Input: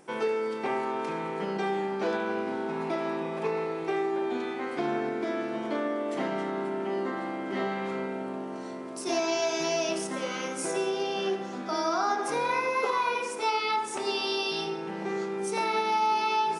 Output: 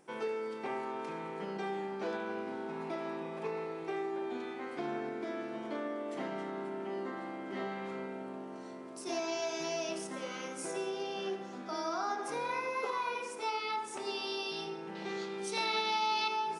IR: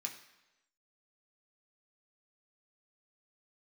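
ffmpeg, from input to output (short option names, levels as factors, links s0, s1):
-filter_complex "[0:a]asettb=1/sr,asplit=3[s0][s1][s2];[s0]atrim=end=14.954[s3];[s1]atrim=start=14.95:end=16.28,asetpts=PTS-STARTPTS,afade=t=in:d=0.004:c=qsin,afade=t=out:st=1.326:d=0.004:c=qsin,equalizer=f=3800:t=o:w=1.2:g=13[s4];[s2]atrim=start=16.276[s5];[s3][s4]acrossfade=d=0.004:c1=hsin:c2=qsin[s6];[s6][s5]acrossfade=d=0.004:c1=qsin:c2=hsin,volume=0.398"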